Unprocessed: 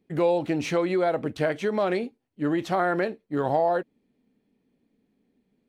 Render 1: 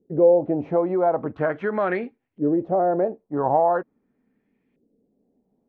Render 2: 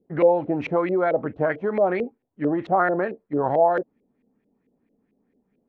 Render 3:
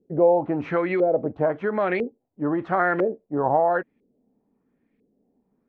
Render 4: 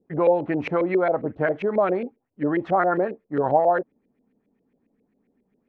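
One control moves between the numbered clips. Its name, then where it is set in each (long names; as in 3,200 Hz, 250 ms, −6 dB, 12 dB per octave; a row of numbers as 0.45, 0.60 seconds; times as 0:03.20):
auto-filter low-pass, speed: 0.42, 4.5, 1, 7.4 Hertz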